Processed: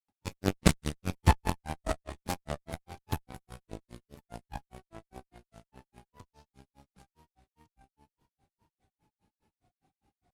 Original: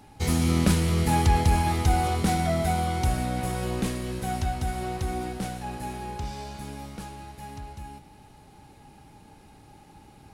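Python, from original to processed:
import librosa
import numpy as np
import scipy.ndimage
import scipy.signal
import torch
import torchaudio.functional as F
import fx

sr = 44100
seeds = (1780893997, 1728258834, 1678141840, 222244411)

y = fx.granulator(x, sr, seeds[0], grain_ms=136.0, per_s=4.9, spray_ms=100.0, spread_st=3)
y = fx.cheby_harmonics(y, sr, harmonics=(3, 4), levels_db=(-10, -26), full_scale_db=-9.0)
y = F.gain(torch.from_numpy(y), 6.5).numpy()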